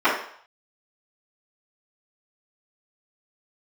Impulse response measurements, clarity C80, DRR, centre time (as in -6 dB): 8.5 dB, -15.5 dB, 37 ms